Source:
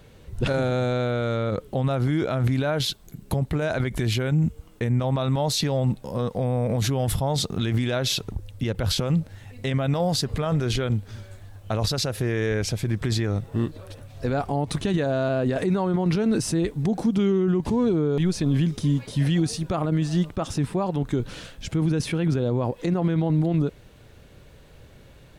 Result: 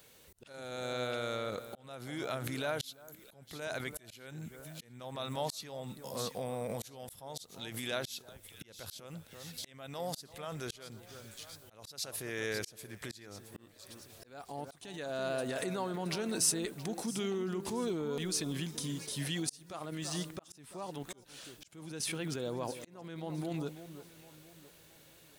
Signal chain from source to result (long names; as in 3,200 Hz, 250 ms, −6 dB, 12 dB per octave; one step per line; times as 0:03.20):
RIAA equalisation recording
delay that swaps between a low-pass and a high-pass 336 ms, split 1,500 Hz, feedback 58%, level −11.5 dB
volume swells 574 ms
level −8.5 dB